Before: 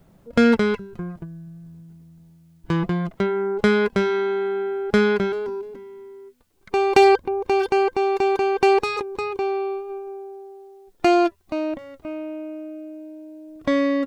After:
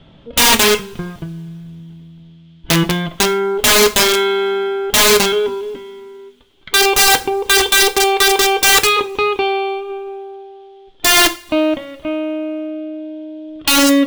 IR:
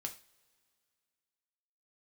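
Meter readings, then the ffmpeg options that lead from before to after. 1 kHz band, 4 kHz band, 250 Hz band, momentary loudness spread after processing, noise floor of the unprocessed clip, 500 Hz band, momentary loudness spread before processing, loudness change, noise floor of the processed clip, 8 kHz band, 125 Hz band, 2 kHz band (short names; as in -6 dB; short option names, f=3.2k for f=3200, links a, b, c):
+5.5 dB, +21.0 dB, +3.0 dB, 19 LU, -55 dBFS, +3.0 dB, 20 LU, +8.5 dB, -44 dBFS, n/a, +4.5 dB, +12.0 dB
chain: -filter_complex "[0:a]lowpass=f=3.3k:t=q:w=7.5,acontrast=56,aeval=exprs='(mod(2.37*val(0)+1,2)-1)/2.37':c=same,asplit=2[a][b];[1:a]atrim=start_sample=2205[c];[b][c]afir=irnorm=-1:irlink=0,volume=5dB[d];[a][d]amix=inputs=2:normalize=0,volume=-5dB"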